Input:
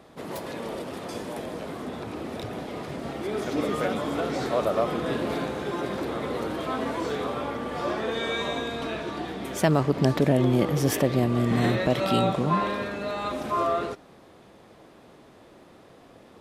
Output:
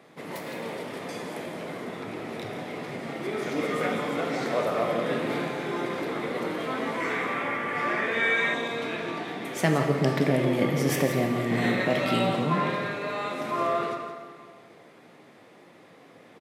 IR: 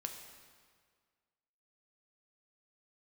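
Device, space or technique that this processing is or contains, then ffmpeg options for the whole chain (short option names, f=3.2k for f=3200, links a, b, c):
PA in a hall: -filter_complex "[0:a]highpass=f=120:w=0.5412,highpass=f=120:w=1.3066,equalizer=f=2.1k:t=o:w=0.52:g=8,aecho=1:1:169:0.282[a];[1:a]atrim=start_sample=2205[b];[a][b]afir=irnorm=-1:irlink=0,asettb=1/sr,asplit=3[c][d][e];[c]atrim=end=7.004[f];[d]atrim=start=7:end=8.54,asetpts=PTS-STARTPTS,afade=t=in:d=0.004:c=qsin,afade=t=out:st=1.536:d=0.004:c=qsin,equalizer=f=500:t=o:w=1:g=-3,equalizer=f=2k:t=o:w=1:g=10,equalizer=f=4k:t=o:w=1:g=-5[g];[e]atrim=start=8.536[h];[f][g]acrossfade=d=0.004:c1=hsin:c2=qsin[i];[i][h]acrossfade=d=0.004:c1=qsin:c2=hsin"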